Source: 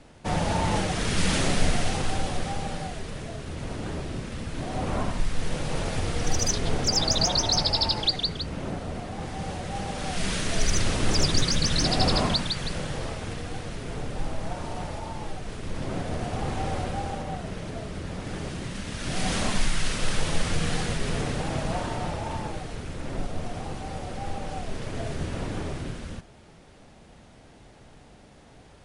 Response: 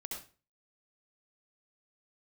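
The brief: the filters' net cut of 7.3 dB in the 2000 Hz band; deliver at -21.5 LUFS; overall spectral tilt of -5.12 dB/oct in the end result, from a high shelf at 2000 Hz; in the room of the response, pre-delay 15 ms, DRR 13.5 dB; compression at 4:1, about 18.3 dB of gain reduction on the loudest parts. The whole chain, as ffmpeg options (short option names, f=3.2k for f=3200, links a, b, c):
-filter_complex "[0:a]highshelf=f=2k:g=-4,equalizer=f=2k:t=o:g=-7,acompressor=threshold=-40dB:ratio=4,asplit=2[a][b];[1:a]atrim=start_sample=2205,adelay=15[c];[b][c]afir=irnorm=-1:irlink=0,volume=-12dB[d];[a][d]amix=inputs=2:normalize=0,volume=22dB"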